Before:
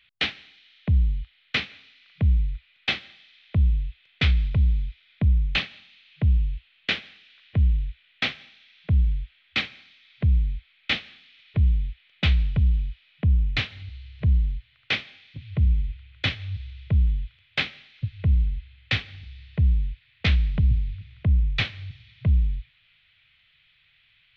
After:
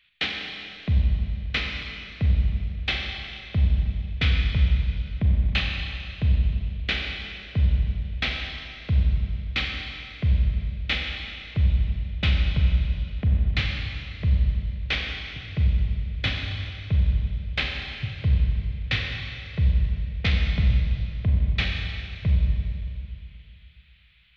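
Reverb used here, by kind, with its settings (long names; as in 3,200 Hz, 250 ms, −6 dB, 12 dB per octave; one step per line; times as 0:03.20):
four-comb reverb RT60 2.5 s, combs from 30 ms, DRR 0.5 dB
level −2 dB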